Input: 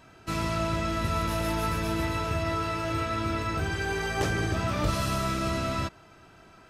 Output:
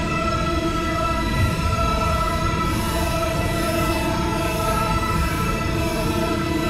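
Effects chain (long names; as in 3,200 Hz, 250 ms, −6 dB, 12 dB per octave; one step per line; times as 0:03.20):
loose part that buzzes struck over −31 dBFS, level −33 dBFS
extreme stretch with random phases 5.6×, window 0.05 s, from 0:00.80
level +7 dB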